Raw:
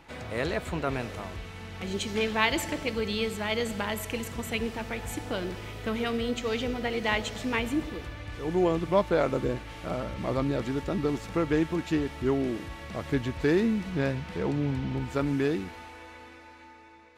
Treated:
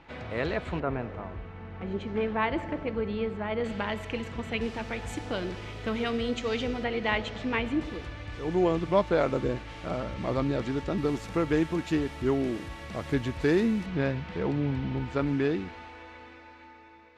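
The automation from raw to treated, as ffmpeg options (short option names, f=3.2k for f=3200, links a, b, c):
-af "asetnsamples=n=441:p=0,asendcmd='0.8 lowpass f 1500;3.64 lowpass f 3400;4.61 lowpass f 6600;6.84 lowpass f 3500;7.81 lowpass f 6800;10.98 lowpass f 12000;13.86 lowpass f 4300',lowpass=3.7k"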